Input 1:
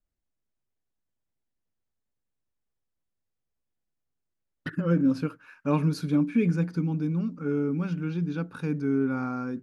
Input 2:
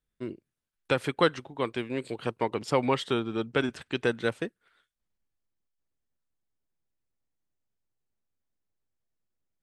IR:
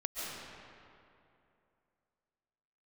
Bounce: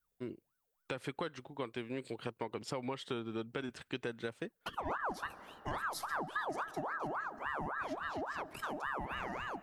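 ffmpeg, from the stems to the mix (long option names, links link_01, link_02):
-filter_complex "[0:a]aemphasis=mode=production:type=75fm,flanger=delay=1.5:depth=5.6:regen=-70:speed=0.34:shape=sinusoidal,aeval=exprs='val(0)*sin(2*PI*970*n/s+970*0.55/3.6*sin(2*PI*3.6*n/s))':channel_layout=same,volume=-1dB,asplit=2[link_01][link_02];[link_02]volume=-22dB[link_03];[1:a]alimiter=limit=-16dB:level=0:latency=1:release=226,volume=-5.5dB[link_04];[2:a]atrim=start_sample=2205[link_05];[link_03][link_05]afir=irnorm=-1:irlink=0[link_06];[link_01][link_04][link_06]amix=inputs=3:normalize=0,acompressor=threshold=-36dB:ratio=3"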